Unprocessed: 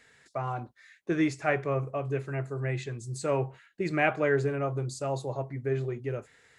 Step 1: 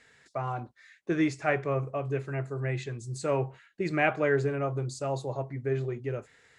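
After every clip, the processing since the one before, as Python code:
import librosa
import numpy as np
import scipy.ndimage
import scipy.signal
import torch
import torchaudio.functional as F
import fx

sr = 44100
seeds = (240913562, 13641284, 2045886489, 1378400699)

y = scipy.signal.sosfilt(scipy.signal.butter(2, 9400.0, 'lowpass', fs=sr, output='sos'), x)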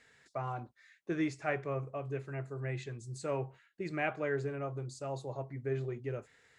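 y = fx.rider(x, sr, range_db=4, speed_s=2.0)
y = y * 10.0 ** (-8.0 / 20.0)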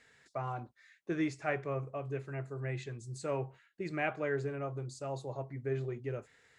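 y = x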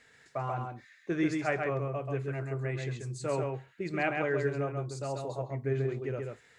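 y = x + 10.0 ** (-4.0 / 20.0) * np.pad(x, (int(135 * sr / 1000.0), 0))[:len(x)]
y = y * 10.0 ** (3.0 / 20.0)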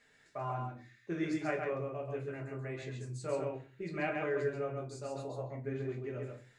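y = fx.room_shoebox(x, sr, seeds[0], volume_m3=120.0, walls='furnished', distance_m=1.3)
y = y * 10.0 ** (-8.0 / 20.0)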